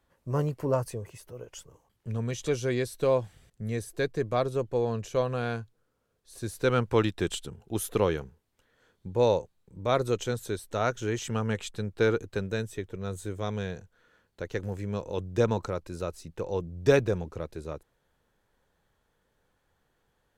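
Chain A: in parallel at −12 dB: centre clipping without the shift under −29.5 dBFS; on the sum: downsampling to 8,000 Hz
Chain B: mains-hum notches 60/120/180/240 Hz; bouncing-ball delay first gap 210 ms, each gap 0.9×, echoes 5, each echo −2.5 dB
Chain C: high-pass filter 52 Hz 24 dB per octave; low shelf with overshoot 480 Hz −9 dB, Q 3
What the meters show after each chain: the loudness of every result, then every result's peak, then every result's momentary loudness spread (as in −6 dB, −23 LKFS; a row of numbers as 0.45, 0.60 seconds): −28.5, −27.5, −31.5 LKFS; −7.0, −7.5, −8.0 dBFS; 15, 12, 16 LU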